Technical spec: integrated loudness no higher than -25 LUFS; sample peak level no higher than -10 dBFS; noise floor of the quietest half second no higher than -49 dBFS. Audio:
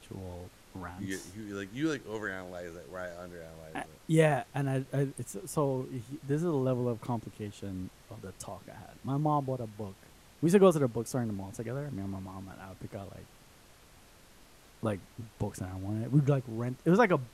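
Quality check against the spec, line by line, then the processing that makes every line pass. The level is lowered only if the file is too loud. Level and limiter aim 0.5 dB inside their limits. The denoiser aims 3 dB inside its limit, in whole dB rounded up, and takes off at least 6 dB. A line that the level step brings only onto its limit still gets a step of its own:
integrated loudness -32.0 LUFS: OK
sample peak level -11.0 dBFS: OK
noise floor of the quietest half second -57 dBFS: OK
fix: none

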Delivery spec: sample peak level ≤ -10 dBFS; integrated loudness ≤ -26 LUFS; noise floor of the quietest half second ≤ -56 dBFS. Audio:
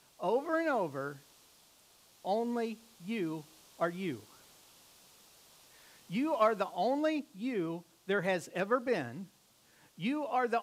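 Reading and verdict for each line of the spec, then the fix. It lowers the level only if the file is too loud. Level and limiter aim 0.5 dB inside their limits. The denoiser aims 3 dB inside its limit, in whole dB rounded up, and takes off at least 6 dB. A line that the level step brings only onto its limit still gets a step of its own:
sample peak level -16.0 dBFS: OK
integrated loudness -34.5 LUFS: OK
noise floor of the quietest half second -66 dBFS: OK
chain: none

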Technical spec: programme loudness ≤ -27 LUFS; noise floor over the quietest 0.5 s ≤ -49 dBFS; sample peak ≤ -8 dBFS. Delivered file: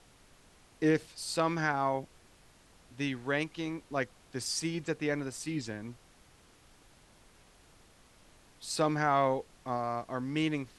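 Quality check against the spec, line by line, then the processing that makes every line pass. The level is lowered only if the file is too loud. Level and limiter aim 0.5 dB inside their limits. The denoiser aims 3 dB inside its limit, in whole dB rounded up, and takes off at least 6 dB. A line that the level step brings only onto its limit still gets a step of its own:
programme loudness -33.0 LUFS: OK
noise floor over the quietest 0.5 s -61 dBFS: OK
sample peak -15.0 dBFS: OK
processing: none

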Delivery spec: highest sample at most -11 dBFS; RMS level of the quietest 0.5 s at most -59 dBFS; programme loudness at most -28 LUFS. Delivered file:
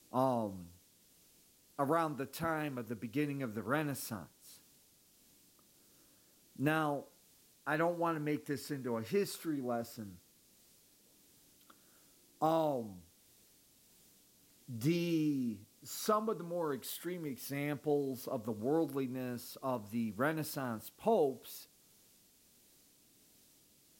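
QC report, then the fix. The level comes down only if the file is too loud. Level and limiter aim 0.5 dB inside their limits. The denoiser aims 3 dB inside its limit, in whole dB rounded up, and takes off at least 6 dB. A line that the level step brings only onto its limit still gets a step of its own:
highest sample -19.0 dBFS: OK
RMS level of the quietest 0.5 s -67 dBFS: OK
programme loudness -37.0 LUFS: OK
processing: none

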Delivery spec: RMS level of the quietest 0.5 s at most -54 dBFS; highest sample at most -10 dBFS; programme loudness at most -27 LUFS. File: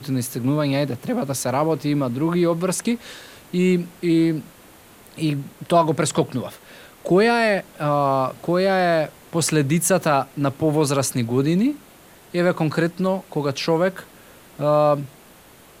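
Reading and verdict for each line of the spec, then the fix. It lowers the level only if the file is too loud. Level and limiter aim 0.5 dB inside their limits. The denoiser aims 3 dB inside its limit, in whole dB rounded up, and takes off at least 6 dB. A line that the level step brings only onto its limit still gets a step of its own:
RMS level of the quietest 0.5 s -48 dBFS: fail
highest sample -5.5 dBFS: fail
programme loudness -21.0 LUFS: fail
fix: gain -6.5 dB

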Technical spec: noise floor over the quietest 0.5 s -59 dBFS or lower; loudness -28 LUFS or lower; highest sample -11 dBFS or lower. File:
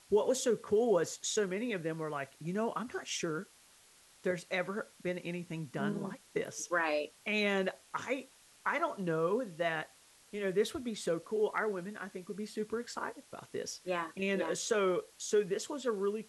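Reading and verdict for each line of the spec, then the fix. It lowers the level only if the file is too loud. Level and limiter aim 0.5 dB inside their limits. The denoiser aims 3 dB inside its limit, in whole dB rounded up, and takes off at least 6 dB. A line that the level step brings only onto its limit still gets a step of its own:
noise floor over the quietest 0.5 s -62 dBFS: OK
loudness -35.0 LUFS: OK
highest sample -18.5 dBFS: OK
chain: none

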